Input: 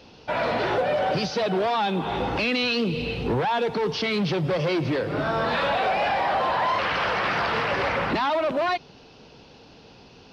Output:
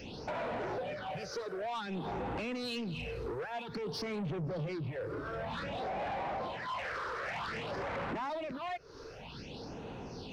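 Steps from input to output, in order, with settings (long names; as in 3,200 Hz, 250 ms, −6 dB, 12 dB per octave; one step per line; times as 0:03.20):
0:04.26–0:06.48: low-shelf EQ 400 Hz +8.5 dB
downward compressor 12 to 1, threshold −36 dBFS, peak gain reduction 20.5 dB
all-pass phaser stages 6, 0.53 Hz, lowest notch 190–4,900 Hz
soft clipping −38.5 dBFS, distortion −13 dB
level +5.5 dB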